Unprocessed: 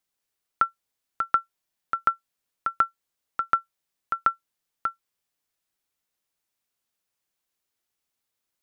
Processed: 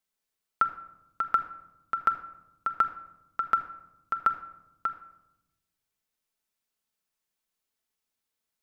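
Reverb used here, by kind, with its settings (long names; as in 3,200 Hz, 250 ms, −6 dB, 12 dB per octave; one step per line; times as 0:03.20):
rectangular room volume 3,400 cubic metres, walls furnished, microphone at 1.5 metres
level −3.5 dB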